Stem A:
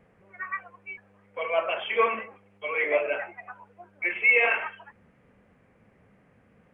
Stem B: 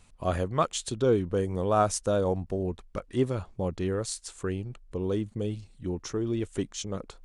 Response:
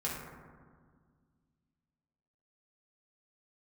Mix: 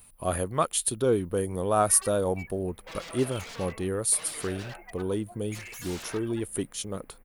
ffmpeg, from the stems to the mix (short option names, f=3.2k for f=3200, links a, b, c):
-filter_complex "[0:a]highshelf=f=2.2k:g=-4.5,acompressor=threshold=-33dB:ratio=2,aeval=exprs='0.0158*(abs(mod(val(0)/0.0158+3,4)-2)-1)':c=same,adelay=1500,volume=-1.5dB[a];[1:a]equalizer=f=7.9k:w=7.3:g=-11.5,aexciter=amount=10.4:drive=8.4:freq=9.1k,volume=0.5dB[b];[a][b]amix=inputs=2:normalize=0,lowshelf=f=190:g=-4"